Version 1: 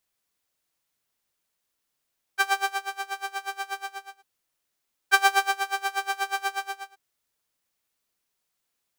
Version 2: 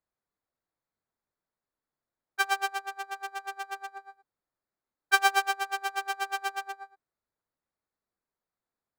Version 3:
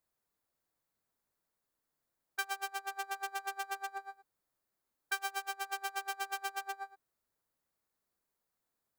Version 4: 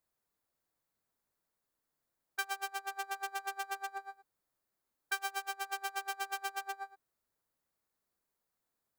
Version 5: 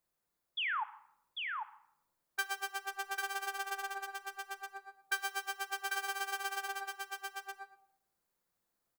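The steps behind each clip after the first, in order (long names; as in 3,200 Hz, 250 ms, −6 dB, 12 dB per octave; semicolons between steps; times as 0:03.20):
adaptive Wiener filter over 15 samples; level −2.5 dB
high-shelf EQ 7,500 Hz +9 dB; downward compressor 8 to 1, threshold −36 dBFS, peak gain reduction 19.5 dB; level +1.5 dB
no processing that can be heard
sound drawn into the spectrogram fall, 0:00.57–0:00.84, 790–3,600 Hz −35 dBFS; single-tap delay 795 ms −4 dB; rectangular room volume 2,600 cubic metres, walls furnished, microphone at 0.85 metres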